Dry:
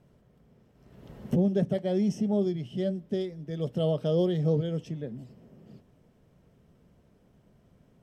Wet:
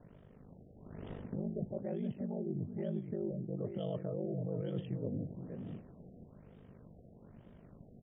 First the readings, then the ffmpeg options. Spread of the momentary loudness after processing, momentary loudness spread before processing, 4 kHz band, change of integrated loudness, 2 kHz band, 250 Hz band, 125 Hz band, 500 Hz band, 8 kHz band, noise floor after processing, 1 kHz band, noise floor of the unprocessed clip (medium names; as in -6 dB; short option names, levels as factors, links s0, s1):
19 LU, 11 LU, -16.0 dB, -11.0 dB, under -10 dB, -10.0 dB, -9.0 dB, -11.0 dB, no reading, -59 dBFS, -10.0 dB, -63 dBFS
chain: -filter_complex "[0:a]alimiter=level_in=1.06:limit=0.0631:level=0:latency=1:release=234,volume=0.944,areverse,acompressor=threshold=0.0112:ratio=16,areverse,aeval=exprs='val(0)*sin(2*PI*25*n/s)':c=same,asplit=2[s0][s1];[s1]adelay=472.3,volume=0.398,highshelf=f=4000:g=-10.6[s2];[s0][s2]amix=inputs=2:normalize=0,afftfilt=real='re*lt(b*sr/1024,750*pow(3800/750,0.5+0.5*sin(2*PI*1.1*pts/sr)))':imag='im*lt(b*sr/1024,750*pow(3800/750,0.5+0.5*sin(2*PI*1.1*pts/sr)))':win_size=1024:overlap=0.75,volume=2.24"